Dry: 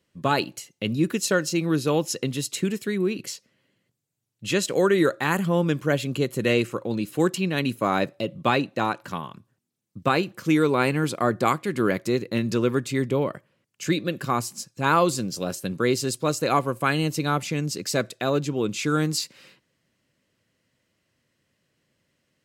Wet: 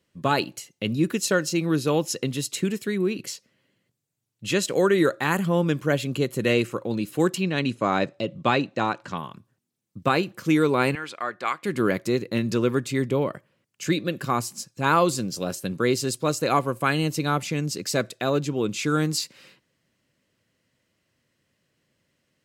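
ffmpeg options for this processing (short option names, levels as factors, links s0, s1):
-filter_complex "[0:a]asettb=1/sr,asplit=3[s0][s1][s2];[s0]atrim=end=7.434[s3];[s1]atrim=start=7.43:end=9.18,asetpts=PTS-STARTPTS,afade=t=in:d=0.004:c=qsin,afade=t=out:st=1.746:d=0.004:c=qsin,lowpass=f=8100:w=0.5412,lowpass=f=8100:w=1.3066[s4];[s2]atrim=start=9.176[s5];[s3][s4]acrossfade=d=0.004:c1=hsin:c2=qsin[s6];[s6][s5]acrossfade=d=0.004:c1=qsin:c2=hsin,asettb=1/sr,asplit=3[s7][s8][s9];[s7]atrim=end=10.954[s10];[s8]atrim=start=10.95:end=11.63,asetpts=PTS-STARTPTS,afade=t=in:d=0.004:c=qsin,afade=t=out:st=0.676:d=0.004:c=qsin,bandpass=f=2100:t=q:w=0.88[s11];[s9]atrim=start=11.626[s12];[s10][s11]acrossfade=d=0.004:c1=hsin:c2=qsin[s13];[s13][s12]acrossfade=d=0.004:c1=qsin:c2=hsin"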